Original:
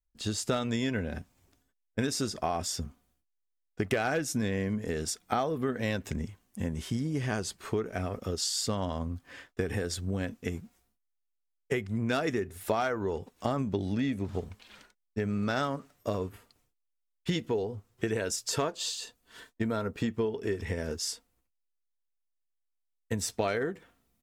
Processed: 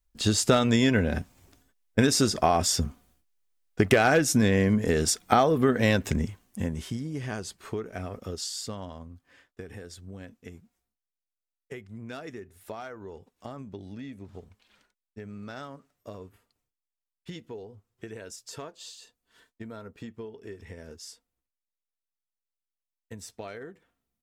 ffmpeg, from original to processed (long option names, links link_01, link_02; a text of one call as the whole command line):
ffmpeg -i in.wav -af "volume=8.5dB,afade=type=out:start_time=5.96:duration=1.04:silence=0.281838,afade=type=out:start_time=8.36:duration=0.72:silence=0.398107" out.wav